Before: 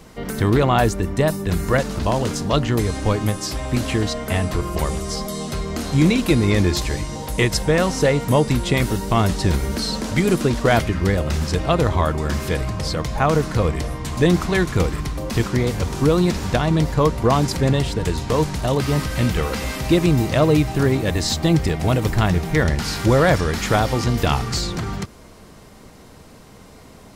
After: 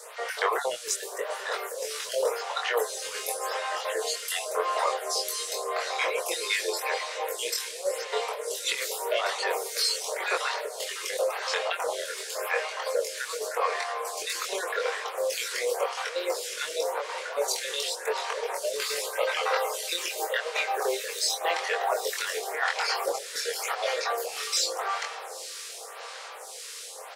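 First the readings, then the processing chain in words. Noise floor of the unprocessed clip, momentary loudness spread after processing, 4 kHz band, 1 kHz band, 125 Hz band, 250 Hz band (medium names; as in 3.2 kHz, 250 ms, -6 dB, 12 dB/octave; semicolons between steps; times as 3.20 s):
-44 dBFS, 6 LU, -2.5 dB, -5.5 dB, under -40 dB, -32.0 dB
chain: random holes in the spectrogram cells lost 34%; steep high-pass 450 Hz 72 dB/octave; compressor with a negative ratio -26 dBFS, ratio -0.5; band noise 830–9900 Hz -43 dBFS; doubling 23 ms -2.5 dB; echo that smears into a reverb 791 ms, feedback 67%, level -14 dB; lamp-driven phase shifter 0.89 Hz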